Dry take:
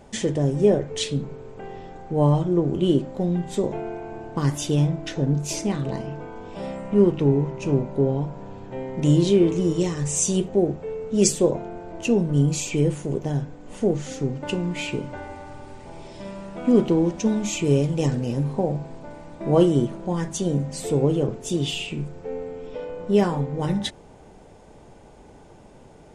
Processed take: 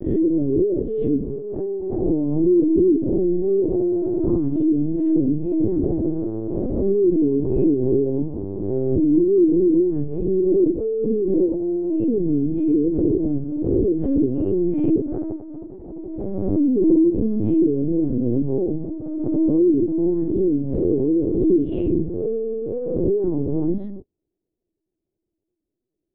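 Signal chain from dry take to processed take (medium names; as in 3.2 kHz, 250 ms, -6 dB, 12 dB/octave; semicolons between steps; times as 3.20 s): reverse spectral sustain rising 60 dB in 0.48 s; de-hum 67.26 Hz, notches 3; gate -36 dBFS, range -46 dB; bass shelf 88 Hz -10 dB; peak limiter -15 dBFS, peak gain reduction 10.5 dB; compression 10:1, threshold -29 dBFS, peak gain reduction 11 dB; resonant low-pass 340 Hz, resonance Q 3.6; LPC vocoder at 8 kHz pitch kept; swell ahead of each attack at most 33 dB/s; trim +7.5 dB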